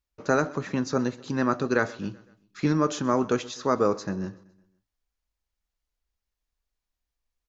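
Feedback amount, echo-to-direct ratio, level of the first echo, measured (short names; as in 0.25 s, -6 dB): 52%, -20.5 dB, -22.0 dB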